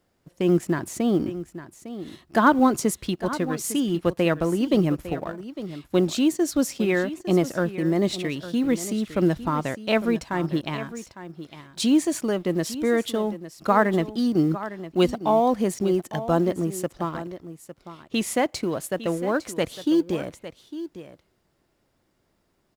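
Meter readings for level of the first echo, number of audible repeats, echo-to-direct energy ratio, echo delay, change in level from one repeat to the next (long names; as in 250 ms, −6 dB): −13.5 dB, 1, −13.5 dB, 855 ms, repeats not evenly spaced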